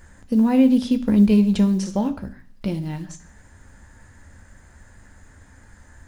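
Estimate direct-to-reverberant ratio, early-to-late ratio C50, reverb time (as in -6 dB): 7.0 dB, 15.5 dB, 0.50 s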